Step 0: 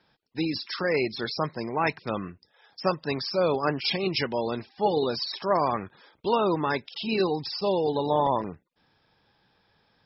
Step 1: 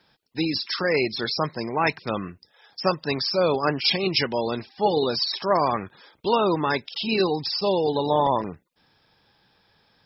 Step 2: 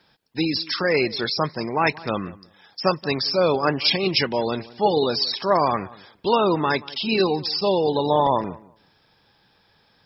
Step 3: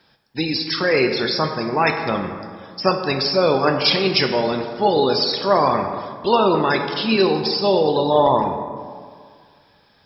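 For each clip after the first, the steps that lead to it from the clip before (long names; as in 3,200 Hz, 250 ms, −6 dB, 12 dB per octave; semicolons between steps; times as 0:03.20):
high-shelf EQ 3,800 Hz +6.5 dB; level +2.5 dB
feedback echo with a low-pass in the loop 181 ms, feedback 18%, low-pass 2,200 Hz, level −20 dB; level +2 dB
dense smooth reverb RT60 2 s, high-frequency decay 0.5×, DRR 4.5 dB; level +2 dB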